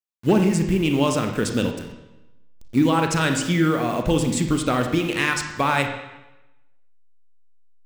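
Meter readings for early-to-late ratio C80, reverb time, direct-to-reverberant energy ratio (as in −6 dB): 8.5 dB, 1.0 s, 4.5 dB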